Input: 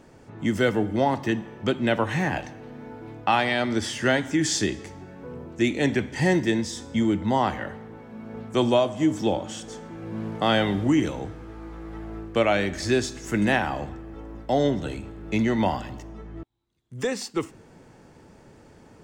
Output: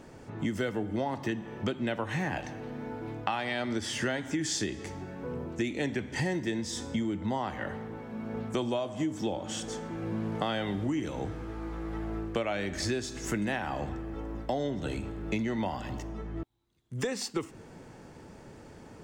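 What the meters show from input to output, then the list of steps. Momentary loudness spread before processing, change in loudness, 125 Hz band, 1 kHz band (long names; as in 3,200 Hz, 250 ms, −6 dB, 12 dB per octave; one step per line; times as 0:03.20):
18 LU, −9.0 dB, −6.0 dB, −9.0 dB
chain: downward compressor, threshold −30 dBFS, peak gain reduction 13.5 dB
level +1.5 dB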